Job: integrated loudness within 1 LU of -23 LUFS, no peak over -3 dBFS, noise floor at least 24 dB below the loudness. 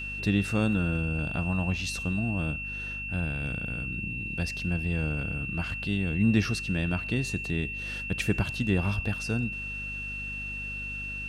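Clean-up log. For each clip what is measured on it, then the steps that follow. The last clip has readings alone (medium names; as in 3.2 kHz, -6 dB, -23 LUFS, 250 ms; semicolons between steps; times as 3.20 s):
hum 50 Hz; highest harmonic 250 Hz; hum level -40 dBFS; steady tone 2.7 kHz; tone level -34 dBFS; loudness -29.5 LUFS; peak level -11.5 dBFS; loudness target -23.0 LUFS
-> de-hum 50 Hz, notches 5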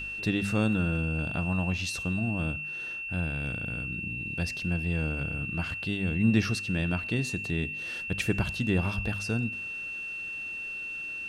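hum not found; steady tone 2.7 kHz; tone level -34 dBFS
-> band-stop 2.7 kHz, Q 30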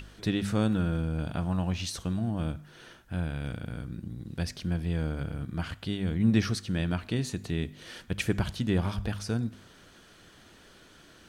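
steady tone not found; loudness -31.0 LUFS; peak level -13.0 dBFS; loudness target -23.0 LUFS
-> trim +8 dB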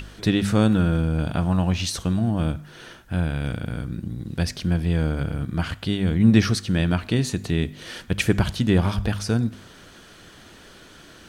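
loudness -23.0 LUFS; peak level -5.0 dBFS; noise floor -48 dBFS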